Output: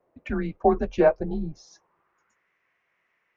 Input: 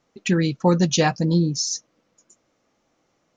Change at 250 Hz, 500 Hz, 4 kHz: −7.5 dB, +1.5 dB, below −20 dB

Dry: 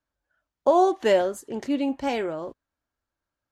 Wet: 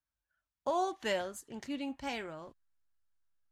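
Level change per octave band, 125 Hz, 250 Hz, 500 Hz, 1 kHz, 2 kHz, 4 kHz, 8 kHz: −9.5, −13.5, −15.0, −11.5, −6.5, −6.0, −5.5 decibels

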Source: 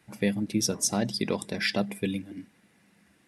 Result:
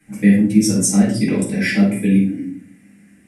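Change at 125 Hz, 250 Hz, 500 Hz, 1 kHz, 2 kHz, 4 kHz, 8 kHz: +15.0, +16.0, +6.5, +3.0, +9.5, +2.0, +8.5 decibels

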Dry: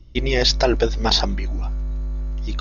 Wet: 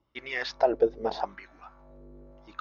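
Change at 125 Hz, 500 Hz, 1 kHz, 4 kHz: −28.0, −5.0, −5.0, −20.5 decibels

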